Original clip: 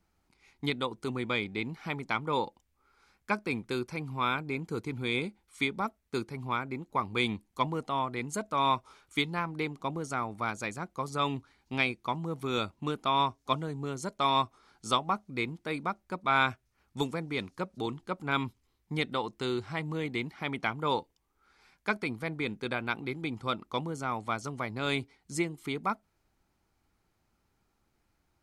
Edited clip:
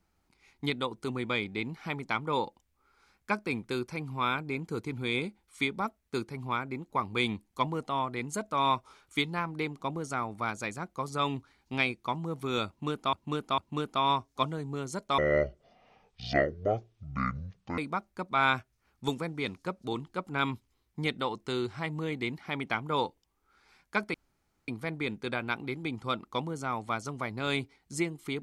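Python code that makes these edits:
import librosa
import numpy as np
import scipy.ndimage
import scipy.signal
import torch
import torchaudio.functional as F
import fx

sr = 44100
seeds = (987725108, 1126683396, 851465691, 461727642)

y = fx.edit(x, sr, fx.repeat(start_s=12.68, length_s=0.45, count=3),
    fx.speed_span(start_s=14.28, length_s=1.43, speed=0.55),
    fx.insert_room_tone(at_s=22.07, length_s=0.54), tone=tone)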